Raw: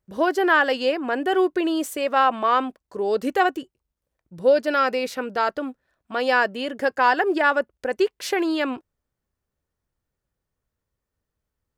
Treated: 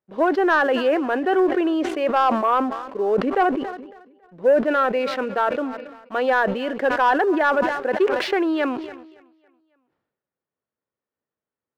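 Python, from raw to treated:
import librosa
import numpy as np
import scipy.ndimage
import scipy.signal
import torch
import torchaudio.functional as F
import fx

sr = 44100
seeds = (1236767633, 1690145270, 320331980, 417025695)

y = scipy.signal.sosfilt(scipy.signal.butter(2, 250.0, 'highpass', fs=sr, output='sos'), x)
y = fx.air_absorb(y, sr, metres=360.0)
y = fx.echo_feedback(y, sr, ms=278, feedback_pct=56, wet_db=-24.0)
y = fx.env_lowpass_down(y, sr, base_hz=2000.0, full_db=-17.5)
y = fx.high_shelf(y, sr, hz=3300.0, db=-8.5, at=(2.38, 4.68))
y = fx.leveller(y, sr, passes=1)
y = fx.sustainer(y, sr, db_per_s=56.0)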